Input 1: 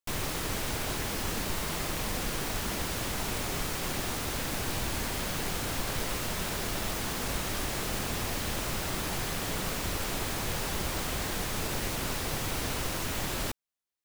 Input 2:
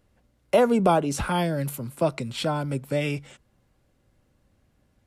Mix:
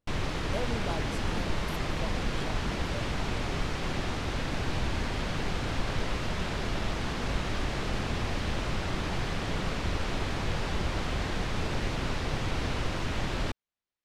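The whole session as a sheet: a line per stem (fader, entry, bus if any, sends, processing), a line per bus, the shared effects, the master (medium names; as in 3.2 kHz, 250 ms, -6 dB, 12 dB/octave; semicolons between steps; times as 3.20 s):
+0.5 dB, 0.00 s, no send, low-pass 4.1 kHz 12 dB/octave; bass shelf 190 Hz +5 dB
-17.0 dB, 0.00 s, no send, none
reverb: none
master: none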